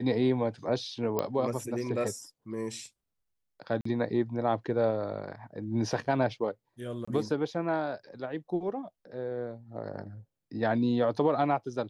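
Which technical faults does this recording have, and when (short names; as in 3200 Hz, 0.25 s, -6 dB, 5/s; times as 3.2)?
1.19 pop -15 dBFS
3.81–3.85 gap 44 ms
7.05–7.08 gap 25 ms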